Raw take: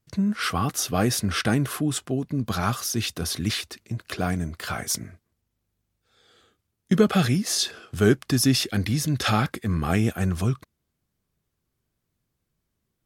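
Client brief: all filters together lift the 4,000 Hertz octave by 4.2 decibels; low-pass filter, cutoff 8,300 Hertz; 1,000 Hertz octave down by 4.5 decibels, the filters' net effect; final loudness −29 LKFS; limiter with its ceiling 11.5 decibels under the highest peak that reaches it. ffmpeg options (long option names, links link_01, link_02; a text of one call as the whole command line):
ffmpeg -i in.wav -af "lowpass=8300,equalizer=frequency=1000:width_type=o:gain=-7,equalizer=frequency=4000:width_type=o:gain=6,volume=-1dB,alimiter=limit=-18.5dB:level=0:latency=1" out.wav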